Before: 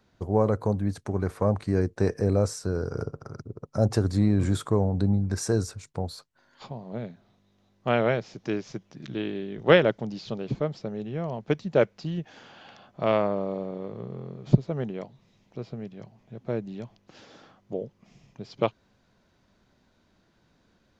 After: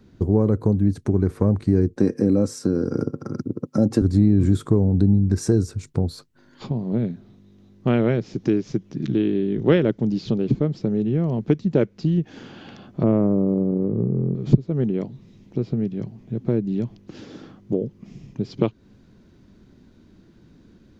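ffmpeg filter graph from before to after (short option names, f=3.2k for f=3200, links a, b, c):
-filter_complex "[0:a]asettb=1/sr,asplit=3[a][b][c];[a]atrim=end=1.974[d];[b]atrim=start=1.97:end=4.02,asetpts=PTS-STARTPTS,afade=t=in:d=0.004:c=qsin,afade=t=out:st=2.046:d=0.004:c=qsin,highpass=f=120:w=0.5412,highpass=f=120:w=1.3066,aecho=1:1:3.7:0.46,atrim=end_sample=90405[e];[c]atrim=start=4.016[f];[d][e]acrossfade=d=0.004:c1=hsin:c2=qsin[g];[g][f]acrossfade=d=0.004:c1=qsin:c2=hsin,asettb=1/sr,asplit=3[h][i][j];[h]atrim=end=13.034[k];[i]atrim=start=13.03:end=14.35,asetpts=PTS-STARTPTS,afade=t=in:d=0.004:c=qsin,afade=t=out:st=1.316:d=0.004:c=qsin,lowpass=1.5k,tiltshelf=f=680:g=5[l];[j]atrim=start=14.346[m];[k][l]acrossfade=d=0.004:c1=hsin:c2=qsin[n];[n][m]acrossfade=d=0.004:c1=qsin:c2=hsin,lowshelf=f=470:t=q:w=1.5:g=10,acompressor=threshold=-25dB:ratio=2,volume=4.5dB"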